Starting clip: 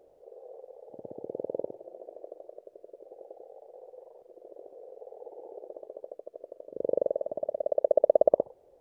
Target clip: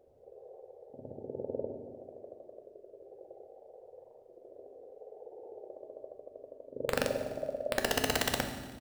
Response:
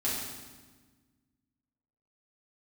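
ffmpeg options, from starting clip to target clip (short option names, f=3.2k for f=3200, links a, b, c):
-filter_complex "[0:a]equalizer=f=95:w=0.8:g=9,aeval=exprs='(mod(5.01*val(0)+1,2)-1)/5.01':c=same,aecho=1:1:148|296|444|592:0.0944|0.0538|0.0307|0.0175,asplit=2[a][b];[1:a]atrim=start_sample=2205,lowshelf=f=280:g=8.5[c];[b][c]afir=irnorm=-1:irlink=0,volume=-9.5dB[d];[a][d]amix=inputs=2:normalize=0,volume=-8dB"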